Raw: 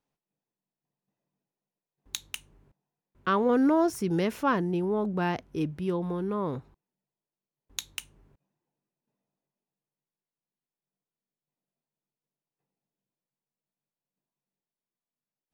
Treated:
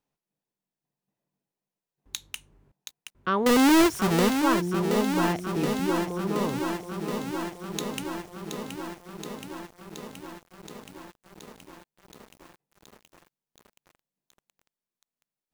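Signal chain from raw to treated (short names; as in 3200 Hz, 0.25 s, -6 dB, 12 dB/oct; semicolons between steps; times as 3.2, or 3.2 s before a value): 3.46–4.38 half-waves squared off; lo-fi delay 0.724 s, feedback 80%, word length 8-bit, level -7 dB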